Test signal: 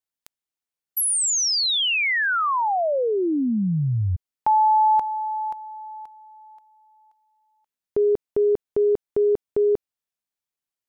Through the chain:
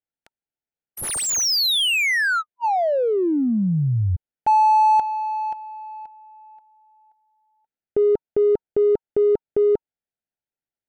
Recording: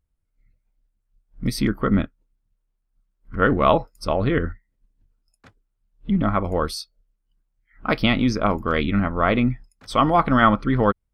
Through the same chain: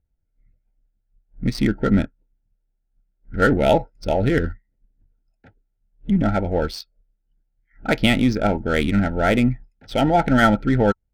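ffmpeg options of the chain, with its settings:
-af "asuperstop=centerf=1100:order=20:qfactor=2.8,adynamicsmooth=sensitivity=4.5:basefreq=1.9k,volume=2dB"

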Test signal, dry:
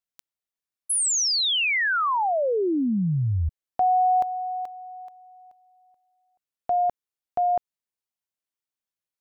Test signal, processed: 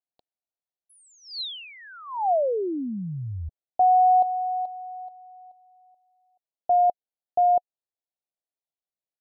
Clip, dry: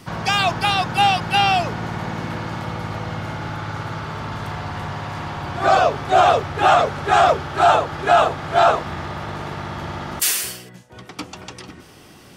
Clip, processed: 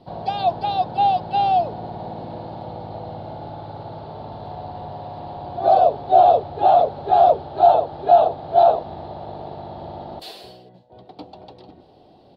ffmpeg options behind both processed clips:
-af "firequalizer=gain_entry='entry(160,0);entry(720,12);entry(1200,-11);entry(2100,-15);entry(4100,2);entry(6000,-25)':delay=0.05:min_phase=1,volume=-8.5dB"

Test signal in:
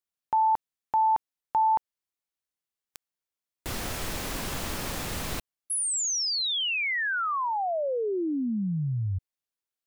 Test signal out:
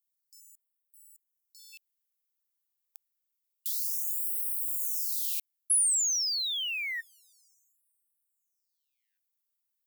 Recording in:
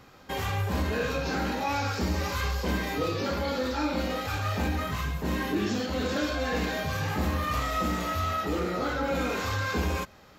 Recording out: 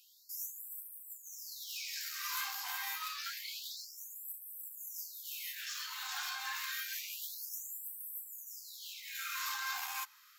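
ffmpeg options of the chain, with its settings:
-af "aeval=exprs='clip(val(0),-1,0.0531)':c=same,aemphasis=mode=production:type=50fm,afftfilt=real='re*gte(b*sr/1024,710*pow(8000/710,0.5+0.5*sin(2*PI*0.28*pts/sr)))':imag='im*gte(b*sr/1024,710*pow(8000/710,0.5+0.5*sin(2*PI*0.28*pts/sr)))':win_size=1024:overlap=0.75,volume=-7dB"

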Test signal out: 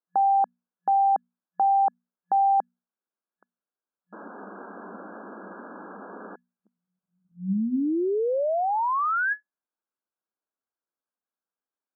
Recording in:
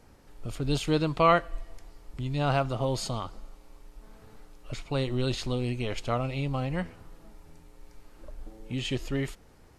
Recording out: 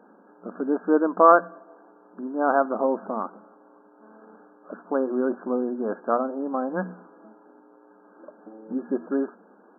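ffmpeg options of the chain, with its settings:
-af "bandreject=f=60:t=h:w=6,bandreject=f=120:t=h:w=6,bandreject=f=180:t=h:w=6,bandreject=f=240:t=h:w=6,afftfilt=real='re*between(b*sr/4096,180,1700)':imag='im*between(b*sr/4096,180,1700)':win_size=4096:overlap=0.75,volume=7dB"

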